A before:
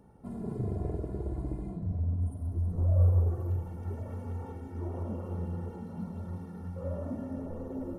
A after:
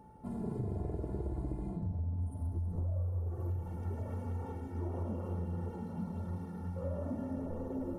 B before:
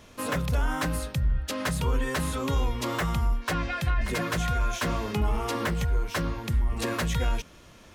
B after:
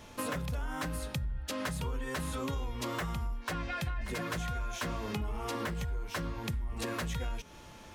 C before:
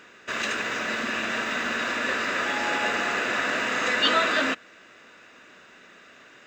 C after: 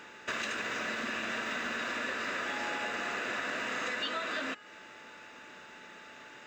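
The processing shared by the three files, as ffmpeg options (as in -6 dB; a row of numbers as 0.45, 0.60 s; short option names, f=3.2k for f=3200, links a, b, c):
-af "bandreject=f=415.2:t=h:w=4,bandreject=f=830.4:t=h:w=4,bandreject=f=1.2456k:t=h:w=4,bandreject=f=1.6608k:t=h:w=4,bandreject=f=2.076k:t=h:w=4,bandreject=f=2.4912k:t=h:w=4,bandreject=f=2.9064k:t=h:w=4,bandreject=f=3.3216k:t=h:w=4,bandreject=f=3.7368k:t=h:w=4,bandreject=f=4.152k:t=h:w=4,bandreject=f=4.5672k:t=h:w=4,bandreject=f=4.9824k:t=h:w=4,bandreject=f=5.3976k:t=h:w=4,bandreject=f=5.8128k:t=h:w=4,bandreject=f=6.228k:t=h:w=4,bandreject=f=6.6432k:t=h:w=4,bandreject=f=7.0584k:t=h:w=4,bandreject=f=7.4736k:t=h:w=4,bandreject=f=7.8888k:t=h:w=4,bandreject=f=8.304k:t=h:w=4,bandreject=f=8.7192k:t=h:w=4,bandreject=f=9.1344k:t=h:w=4,bandreject=f=9.5496k:t=h:w=4,bandreject=f=9.9648k:t=h:w=4,bandreject=f=10.38k:t=h:w=4,bandreject=f=10.7952k:t=h:w=4,bandreject=f=11.2104k:t=h:w=4,bandreject=f=11.6256k:t=h:w=4,bandreject=f=12.0408k:t=h:w=4,aeval=exprs='val(0)+0.00126*sin(2*PI*870*n/s)':c=same,acompressor=threshold=-32dB:ratio=10"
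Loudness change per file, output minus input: -5.0, -8.0, -9.5 LU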